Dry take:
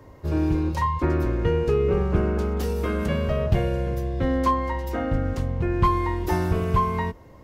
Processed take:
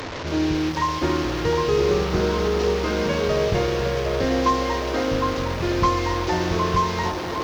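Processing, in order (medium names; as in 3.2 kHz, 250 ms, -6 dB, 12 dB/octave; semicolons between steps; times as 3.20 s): one-bit delta coder 32 kbps, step -26 dBFS; bass shelf 140 Hz -10 dB; feedback echo behind a band-pass 759 ms, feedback 56%, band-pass 640 Hz, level -5 dB; reverberation RT60 3.8 s, pre-delay 3 ms, DRR 11.5 dB; bit-crushed delay 275 ms, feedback 55%, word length 7-bit, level -11.5 dB; trim +2.5 dB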